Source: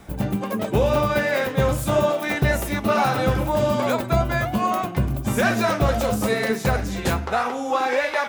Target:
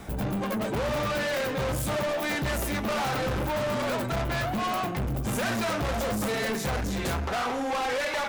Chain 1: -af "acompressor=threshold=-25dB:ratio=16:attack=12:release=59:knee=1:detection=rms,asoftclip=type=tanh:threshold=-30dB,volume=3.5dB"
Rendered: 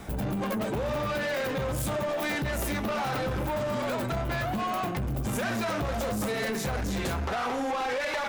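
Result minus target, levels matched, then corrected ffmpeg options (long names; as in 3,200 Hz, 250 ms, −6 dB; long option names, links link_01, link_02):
downward compressor: peak gain reduction +11 dB
-af "asoftclip=type=tanh:threshold=-30dB,volume=3.5dB"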